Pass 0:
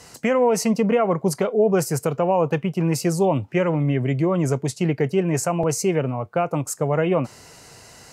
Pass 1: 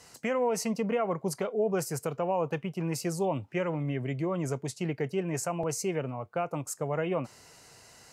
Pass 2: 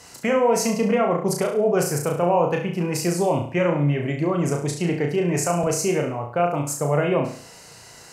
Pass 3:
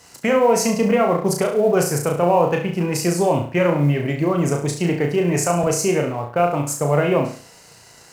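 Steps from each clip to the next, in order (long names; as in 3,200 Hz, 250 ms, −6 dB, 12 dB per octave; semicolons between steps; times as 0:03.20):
low-shelf EQ 490 Hz −3.5 dB; level −8 dB
flutter between parallel walls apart 5.9 metres, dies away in 0.48 s; level +7.5 dB
mu-law and A-law mismatch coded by A; level +3.5 dB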